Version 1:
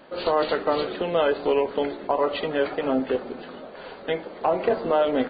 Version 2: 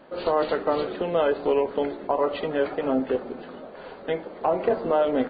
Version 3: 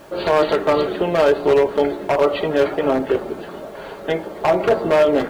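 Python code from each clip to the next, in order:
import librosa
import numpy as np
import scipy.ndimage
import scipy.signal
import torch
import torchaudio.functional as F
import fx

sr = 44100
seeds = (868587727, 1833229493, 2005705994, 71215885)

y1 = fx.high_shelf(x, sr, hz=2200.0, db=-8.0)
y2 = fx.dmg_noise_colour(y1, sr, seeds[0], colour='pink', level_db=-59.0)
y2 = 10.0 ** (-16.0 / 20.0) * (np.abs((y2 / 10.0 ** (-16.0 / 20.0) + 3.0) % 4.0 - 2.0) - 1.0)
y2 = fx.notch_comb(y2, sr, f0_hz=250.0)
y2 = y2 * librosa.db_to_amplitude(9.0)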